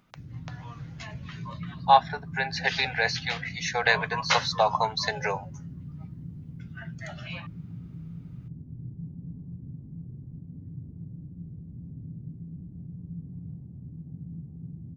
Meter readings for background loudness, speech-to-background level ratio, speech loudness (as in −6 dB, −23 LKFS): −41.0 LKFS, 15.5 dB, −25.5 LKFS